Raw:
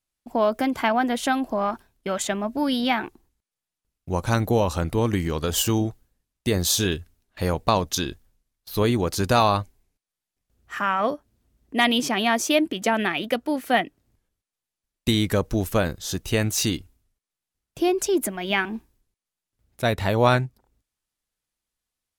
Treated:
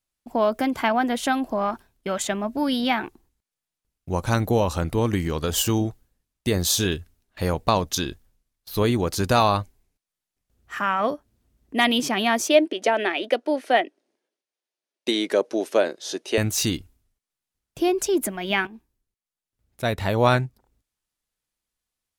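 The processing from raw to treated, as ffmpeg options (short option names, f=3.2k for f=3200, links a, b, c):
-filter_complex "[0:a]asettb=1/sr,asplit=3[a][b][c];[a]atrim=end=12.484[d];[b]atrim=start=12.48:end=16.38,asetpts=PTS-STARTPTS,afade=t=in:d=0.004:c=qsin,afade=t=out:st=3.896:d=0.004:c=qsin,highpass=f=290:w=0.5412,highpass=f=290:w=1.3066,equalizer=f=380:t=q:w=4:g=5,equalizer=f=600:t=q:w=4:g=6,equalizer=f=1.2k:t=q:w=4:g=-4,equalizer=f=7.6k:t=q:w=4:g=-8,lowpass=f=9.2k:w=0.5412,lowpass=f=9.2k:w=1.3066[e];[c]atrim=start=16.376[f];[d][e]acrossfade=d=0.004:c1=hsin:c2=qsin[g];[g][f]acrossfade=d=0.004:c1=qsin:c2=hsin,asplit=2[h][i];[h]atrim=end=18.67,asetpts=PTS-STARTPTS,afade=t=out:st=18.666:d=0.004:c=hsin:silence=0.223872[j];[i]atrim=start=18.67,asetpts=PTS-STARTPTS,afade=t=in:d=1.64:silence=0.223872[k];[j][k]concat=n=2:v=0:a=1"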